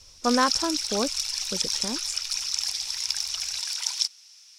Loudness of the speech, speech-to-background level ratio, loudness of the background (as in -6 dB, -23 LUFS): -29.0 LUFS, -2.0 dB, -27.0 LUFS